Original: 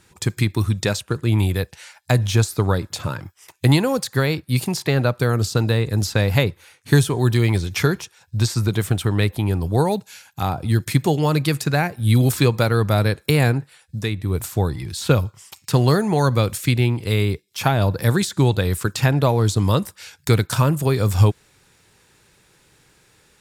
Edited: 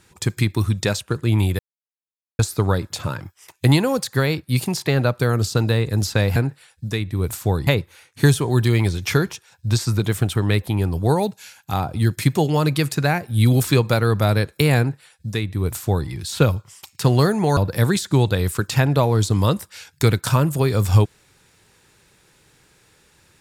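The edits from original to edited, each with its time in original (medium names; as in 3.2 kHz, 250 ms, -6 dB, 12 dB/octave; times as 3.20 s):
1.59–2.39 s: mute
13.47–14.78 s: copy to 6.36 s
16.26–17.83 s: delete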